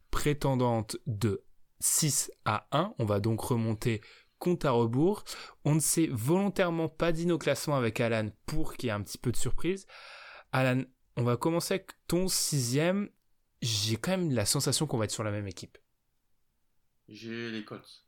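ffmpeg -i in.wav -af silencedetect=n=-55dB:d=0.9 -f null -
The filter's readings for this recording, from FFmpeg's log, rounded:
silence_start: 15.77
silence_end: 17.08 | silence_duration: 1.31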